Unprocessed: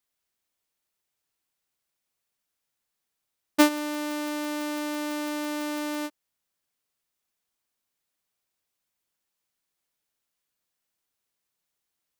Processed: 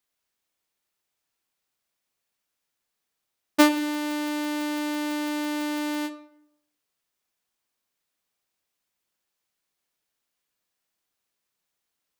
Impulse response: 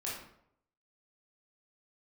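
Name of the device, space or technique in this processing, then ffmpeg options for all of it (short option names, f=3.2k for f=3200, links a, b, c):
filtered reverb send: -filter_complex "[0:a]asplit=2[a][b];[b]highpass=150,lowpass=7.7k[c];[1:a]atrim=start_sample=2205[d];[c][d]afir=irnorm=-1:irlink=0,volume=-8dB[e];[a][e]amix=inputs=2:normalize=0"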